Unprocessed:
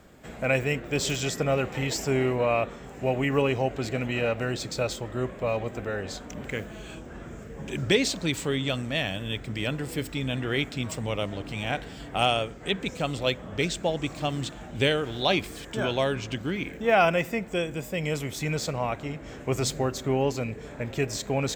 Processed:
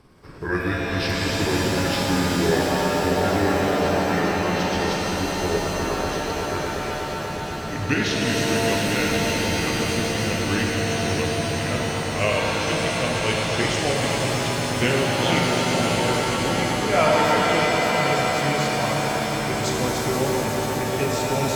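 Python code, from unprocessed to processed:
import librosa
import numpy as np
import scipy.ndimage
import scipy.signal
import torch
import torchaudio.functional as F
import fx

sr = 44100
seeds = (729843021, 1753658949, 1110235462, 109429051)

y = fx.pitch_glide(x, sr, semitones=-7.0, runs='ending unshifted')
y = fx.echo_swell(y, sr, ms=121, loudest=5, wet_db=-11.5)
y = fx.rev_shimmer(y, sr, seeds[0], rt60_s=3.1, semitones=7, shimmer_db=-2, drr_db=-0.5)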